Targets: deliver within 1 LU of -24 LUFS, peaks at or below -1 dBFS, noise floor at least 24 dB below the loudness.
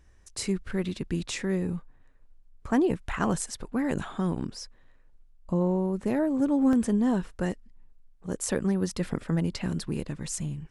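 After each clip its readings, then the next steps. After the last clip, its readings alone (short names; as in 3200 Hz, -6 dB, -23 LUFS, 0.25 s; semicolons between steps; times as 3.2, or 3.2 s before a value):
dropouts 1; longest dropout 1.3 ms; loudness -29.0 LUFS; peak -11.5 dBFS; loudness target -24.0 LUFS
-> interpolate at 6.73, 1.3 ms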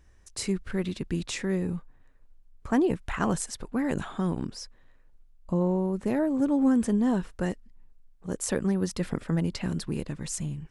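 dropouts 0; loudness -29.0 LUFS; peak -11.5 dBFS; loudness target -24.0 LUFS
-> gain +5 dB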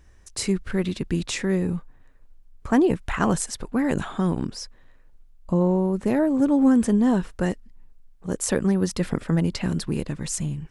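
loudness -24.0 LUFS; peak -6.5 dBFS; noise floor -52 dBFS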